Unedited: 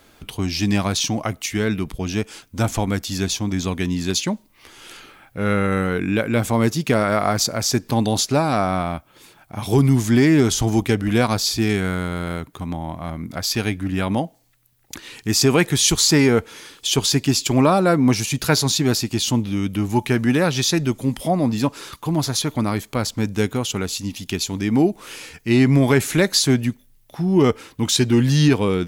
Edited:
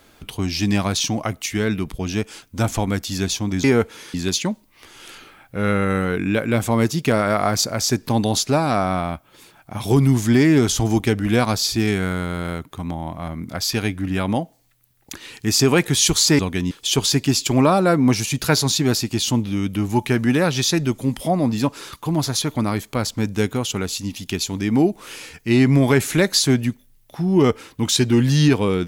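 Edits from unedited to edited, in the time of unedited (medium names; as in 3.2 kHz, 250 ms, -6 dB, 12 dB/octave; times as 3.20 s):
3.64–3.96 s: swap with 16.21–16.71 s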